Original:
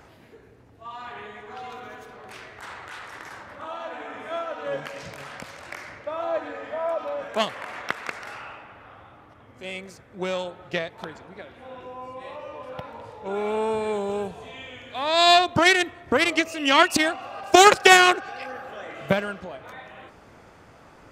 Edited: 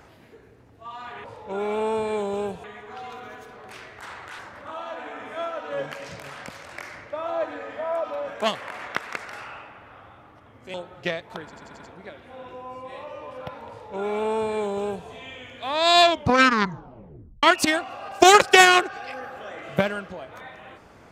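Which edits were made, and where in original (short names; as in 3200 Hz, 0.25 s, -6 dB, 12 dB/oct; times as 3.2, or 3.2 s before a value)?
2.99–3.33 cut
9.68–10.42 cut
11.12 stutter 0.09 s, 5 plays
13–14.4 copy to 1.24
15.33 tape stop 1.42 s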